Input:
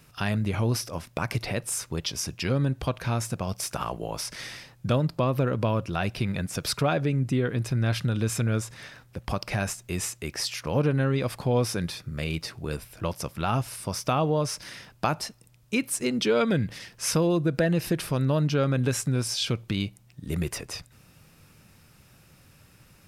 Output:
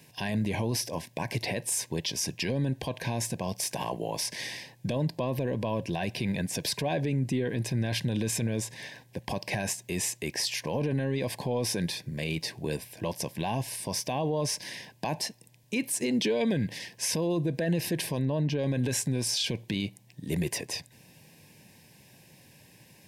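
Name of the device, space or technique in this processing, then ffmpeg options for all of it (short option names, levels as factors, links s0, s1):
PA system with an anti-feedback notch: -filter_complex "[0:a]highpass=140,asuperstop=centerf=1300:order=8:qfactor=2.6,alimiter=limit=0.0794:level=0:latency=1:release=15,asettb=1/sr,asplit=3[s0][s1][s2];[s0]atrim=end=18.194[s3];[s1]atrim=start=18.19:end=18.59,asetpts=PTS-STARTPTS,afade=t=in:d=0.004:c=qsin,afade=t=out:st=0.396:d=0.004:c=qsin,highshelf=f=4000:g=-11[s4];[s2]atrim=start=18.586[s5];[s3][s4]acrossfade=d=0.004:c1=hsin:c2=qsin[s6];[s6][s5]acrossfade=d=0.004:c1=qsin:c2=hsin,volume=1.26"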